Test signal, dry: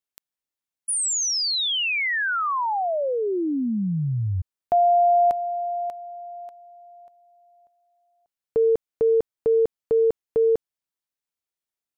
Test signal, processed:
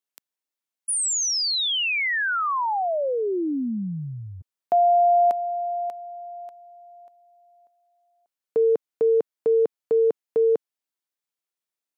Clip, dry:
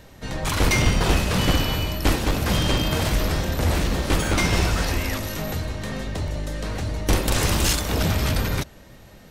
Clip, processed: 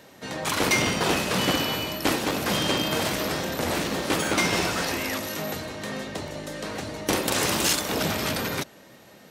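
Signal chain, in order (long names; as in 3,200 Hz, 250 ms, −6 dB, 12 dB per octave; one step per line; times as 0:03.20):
high-pass filter 210 Hz 12 dB per octave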